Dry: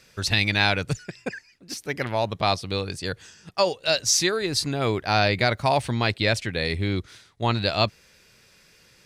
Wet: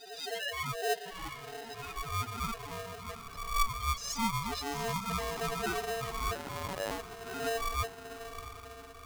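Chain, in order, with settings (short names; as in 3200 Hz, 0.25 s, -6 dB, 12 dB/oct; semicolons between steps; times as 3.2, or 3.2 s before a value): spectral swells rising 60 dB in 1.05 s; flange 0.49 Hz, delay 5.6 ms, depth 2.2 ms, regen -7%; loudest bins only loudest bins 2; diffused feedback echo 0.709 s, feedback 52%, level -10.5 dB; 6.35–6.91 LPC vocoder at 8 kHz pitch kept; polarity switched at an audio rate 570 Hz; gain -4 dB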